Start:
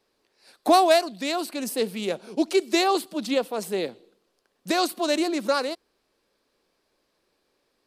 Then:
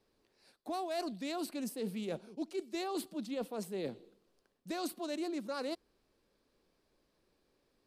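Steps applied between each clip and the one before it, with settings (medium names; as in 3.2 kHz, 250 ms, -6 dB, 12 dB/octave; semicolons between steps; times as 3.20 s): bass shelf 280 Hz +12 dB; reverse; compression 10:1, threshold -28 dBFS, peak gain reduction 18 dB; reverse; trim -7 dB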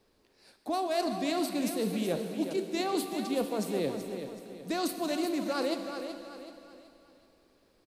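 on a send: feedback delay 377 ms, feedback 39%, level -9 dB; on the sum: plate-style reverb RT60 2.8 s, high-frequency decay 1×, DRR 7 dB; trim +6.5 dB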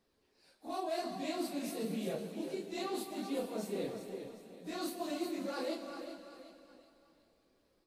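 phase randomisation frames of 100 ms; trim -7.5 dB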